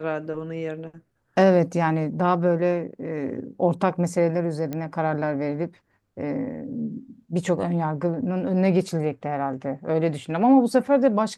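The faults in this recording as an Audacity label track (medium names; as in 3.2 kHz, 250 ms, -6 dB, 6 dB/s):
4.730000	4.730000	pop -17 dBFS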